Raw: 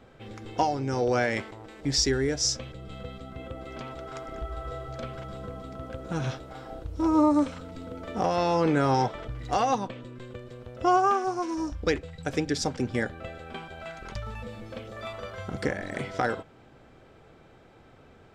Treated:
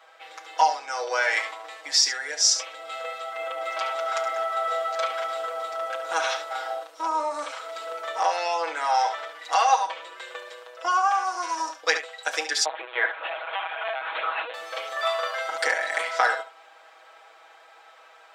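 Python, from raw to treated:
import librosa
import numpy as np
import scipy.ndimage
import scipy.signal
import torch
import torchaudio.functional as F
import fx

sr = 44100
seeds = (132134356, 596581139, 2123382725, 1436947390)

p1 = x + fx.room_early_taps(x, sr, ms=(32, 71), db=(-16.5, -10.5), dry=0)
p2 = fx.rider(p1, sr, range_db=5, speed_s=0.5)
p3 = fx.lpc_vocoder(p2, sr, seeds[0], excitation='pitch_kept', order=8, at=(12.65, 14.54))
p4 = scipy.signal.sosfilt(scipy.signal.butter(4, 720.0, 'highpass', fs=sr, output='sos'), p3)
p5 = p4 + 0.92 * np.pad(p4, (int(6.2 * sr / 1000.0), 0))[:len(p4)]
y = p5 * 10.0 ** (5.5 / 20.0)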